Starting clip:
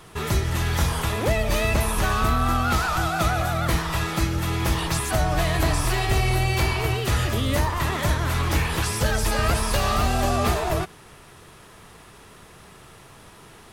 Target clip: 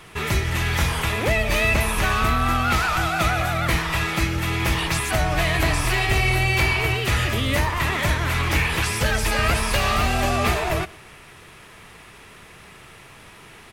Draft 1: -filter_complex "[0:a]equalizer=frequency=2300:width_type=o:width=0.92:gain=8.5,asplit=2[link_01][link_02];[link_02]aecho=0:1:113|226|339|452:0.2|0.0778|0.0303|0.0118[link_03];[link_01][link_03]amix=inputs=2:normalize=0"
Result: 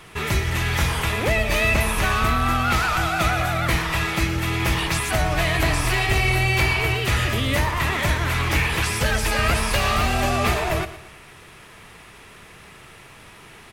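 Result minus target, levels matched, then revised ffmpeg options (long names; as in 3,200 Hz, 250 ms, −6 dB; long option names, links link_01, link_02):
echo-to-direct +9.5 dB
-filter_complex "[0:a]equalizer=frequency=2300:width_type=o:width=0.92:gain=8.5,asplit=2[link_01][link_02];[link_02]aecho=0:1:113|226|339:0.0668|0.0261|0.0102[link_03];[link_01][link_03]amix=inputs=2:normalize=0"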